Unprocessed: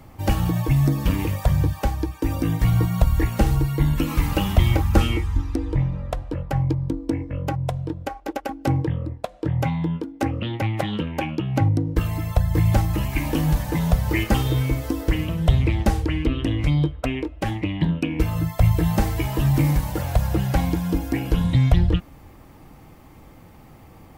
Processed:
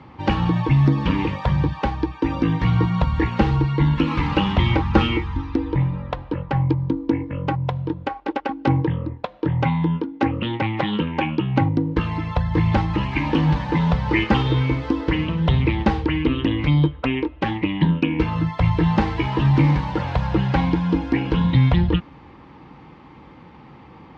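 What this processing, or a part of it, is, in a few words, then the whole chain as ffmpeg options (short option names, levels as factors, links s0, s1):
guitar cabinet: -af "highpass=86,equalizer=f=100:t=q:w=4:g=-9,equalizer=f=660:t=q:w=4:g=-9,equalizer=f=940:t=q:w=4:g=6,lowpass=f=4000:w=0.5412,lowpass=f=4000:w=1.3066,volume=1.68"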